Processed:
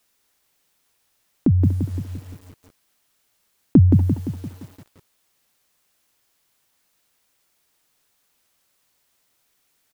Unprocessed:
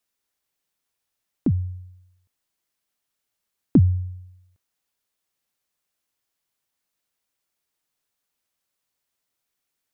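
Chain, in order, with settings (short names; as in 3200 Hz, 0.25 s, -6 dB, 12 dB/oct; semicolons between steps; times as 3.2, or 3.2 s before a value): in parallel at 0 dB: negative-ratio compressor -29 dBFS, ratio -1; on the sum: speakerphone echo 0.24 s, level -13 dB; stuck buffer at 1.88, samples 512, times 9; lo-fi delay 0.172 s, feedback 55%, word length 8-bit, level -4.5 dB; gain +2.5 dB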